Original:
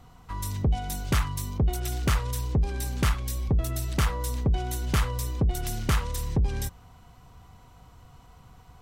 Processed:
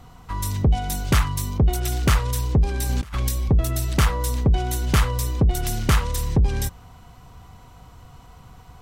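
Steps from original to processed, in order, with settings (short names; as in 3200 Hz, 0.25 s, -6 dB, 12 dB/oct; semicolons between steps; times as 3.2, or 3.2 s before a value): 2.89–3.29 negative-ratio compressor -30 dBFS, ratio -0.5; gain +6 dB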